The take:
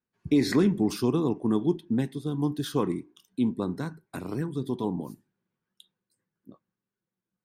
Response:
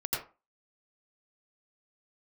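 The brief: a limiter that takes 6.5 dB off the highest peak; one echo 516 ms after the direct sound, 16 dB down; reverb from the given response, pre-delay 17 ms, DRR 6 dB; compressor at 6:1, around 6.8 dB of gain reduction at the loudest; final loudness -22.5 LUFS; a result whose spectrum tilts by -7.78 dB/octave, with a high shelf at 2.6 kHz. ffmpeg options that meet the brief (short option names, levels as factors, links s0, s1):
-filter_complex "[0:a]highshelf=f=2600:g=-8.5,acompressor=threshold=0.0562:ratio=6,alimiter=limit=0.0668:level=0:latency=1,aecho=1:1:516:0.158,asplit=2[s0][s1];[1:a]atrim=start_sample=2205,adelay=17[s2];[s1][s2]afir=irnorm=-1:irlink=0,volume=0.266[s3];[s0][s3]amix=inputs=2:normalize=0,volume=3.35"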